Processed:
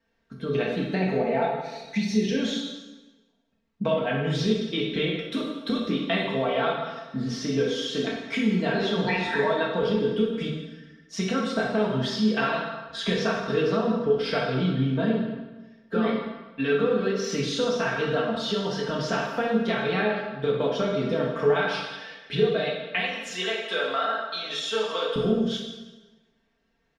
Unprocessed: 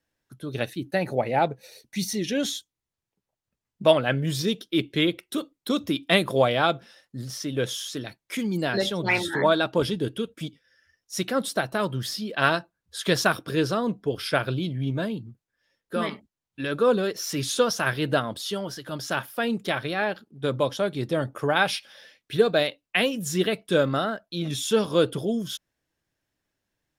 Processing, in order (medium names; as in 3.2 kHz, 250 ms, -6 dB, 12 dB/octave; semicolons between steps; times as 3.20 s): 23.00–25.16 s: high-pass 830 Hz 12 dB/octave; comb 4.4 ms, depth 88%; compression, threshold -29 dBFS, peak gain reduction 19 dB; distance through air 170 m; plate-style reverb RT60 1.2 s, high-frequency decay 0.85×, DRR -2.5 dB; trim +3.5 dB